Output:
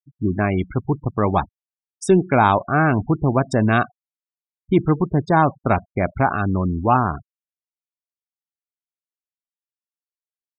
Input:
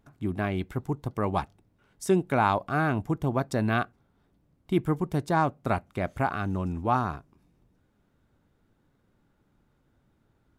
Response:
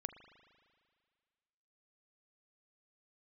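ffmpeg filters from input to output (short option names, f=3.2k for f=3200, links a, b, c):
-filter_complex "[0:a]asplit=2[a][b];[1:a]atrim=start_sample=2205,atrim=end_sample=6615[c];[b][c]afir=irnorm=-1:irlink=0,volume=-7dB[d];[a][d]amix=inputs=2:normalize=0,acontrast=74,afftfilt=real='re*gte(hypot(re,im),0.0501)':imag='im*gte(hypot(re,im),0.0501)':win_size=1024:overlap=0.75"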